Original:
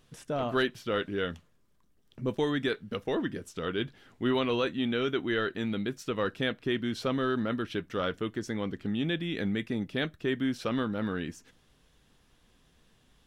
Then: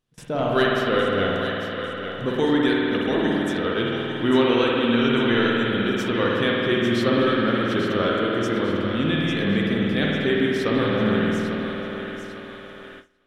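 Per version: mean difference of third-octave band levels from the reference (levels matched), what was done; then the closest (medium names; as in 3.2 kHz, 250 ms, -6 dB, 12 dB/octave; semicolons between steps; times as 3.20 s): 7.5 dB: thinning echo 848 ms, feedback 45%, level -7.5 dB; spring tank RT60 3.2 s, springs 51 ms, chirp 30 ms, DRR -3.5 dB; gate with hold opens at -36 dBFS; trim +5 dB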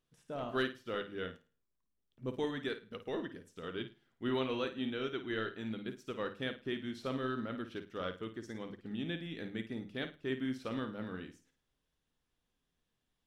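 3.0 dB: hum notches 50/100/150/200 Hz; flutter echo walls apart 9.2 m, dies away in 0.41 s; upward expansion 1.5:1, over -50 dBFS; trim -6.5 dB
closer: second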